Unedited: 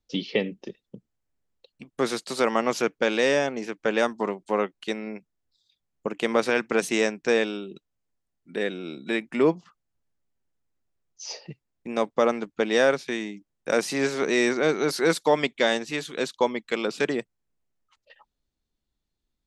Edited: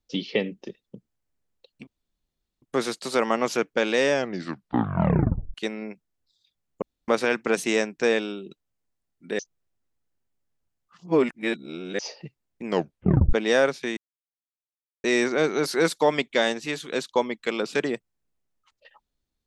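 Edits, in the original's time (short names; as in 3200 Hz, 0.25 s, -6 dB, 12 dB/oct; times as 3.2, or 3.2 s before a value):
1.87 insert room tone 0.75 s
3.37 tape stop 1.42 s
6.07–6.33 room tone
8.64–11.24 reverse
11.89 tape stop 0.69 s
13.22–14.29 mute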